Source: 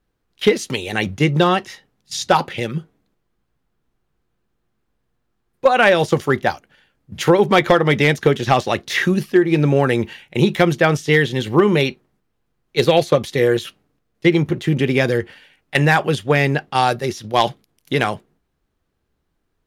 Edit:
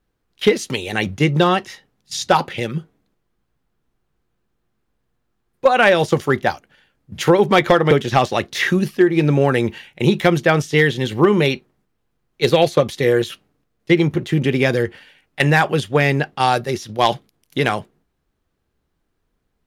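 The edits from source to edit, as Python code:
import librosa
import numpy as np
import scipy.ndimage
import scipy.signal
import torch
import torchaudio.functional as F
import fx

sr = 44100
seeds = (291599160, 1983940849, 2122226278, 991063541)

y = fx.edit(x, sr, fx.cut(start_s=7.91, length_s=0.35), tone=tone)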